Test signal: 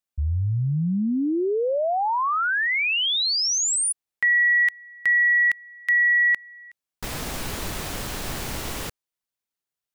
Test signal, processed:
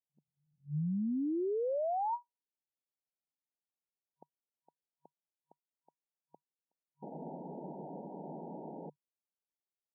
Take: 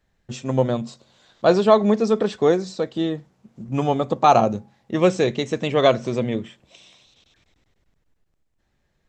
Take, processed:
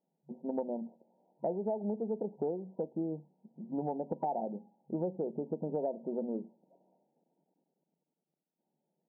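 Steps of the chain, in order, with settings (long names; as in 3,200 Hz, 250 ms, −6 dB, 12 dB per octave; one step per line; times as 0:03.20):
brick-wall band-pass 150–960 Hz
downward compressor 8 to 1, threshold −23 dBFS
level −8 dB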